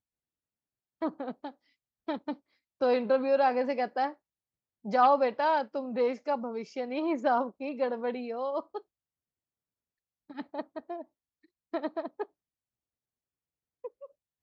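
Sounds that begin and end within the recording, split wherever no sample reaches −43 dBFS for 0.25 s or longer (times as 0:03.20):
0:01.02–0:01.50
0:02.08–0:02.34
0:02.81–0:04.13
0:04.85–0:08.79
0:10.30–0:11.02
0:11.74–0:12.24
0:13.84–0:14.06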